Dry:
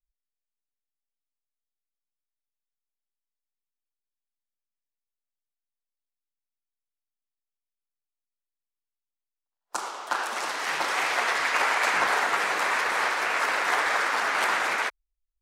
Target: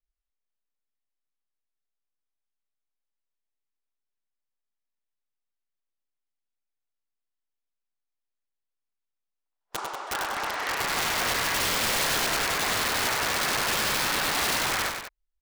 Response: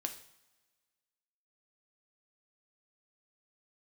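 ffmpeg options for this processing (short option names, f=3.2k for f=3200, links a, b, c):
-af "aemphasis=mode=reproduction:type=50kf,aeval=exprs='(mod(11.9*val(0)+1,2)-1)/11.9':c=same,aecho=1:1:99.13|189.5:0.501|0.316"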